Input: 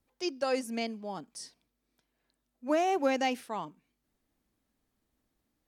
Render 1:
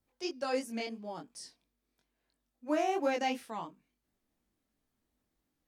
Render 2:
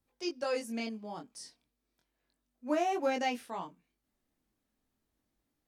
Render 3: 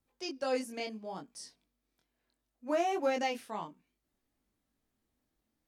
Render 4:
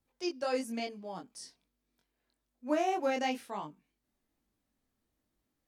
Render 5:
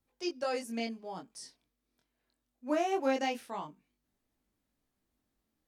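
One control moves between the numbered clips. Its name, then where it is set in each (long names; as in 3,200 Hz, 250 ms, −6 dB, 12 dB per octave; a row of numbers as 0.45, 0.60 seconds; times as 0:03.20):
chorus effect, speed: 2.9, 0.34, 0.67, 1.1, 0.23 Hertz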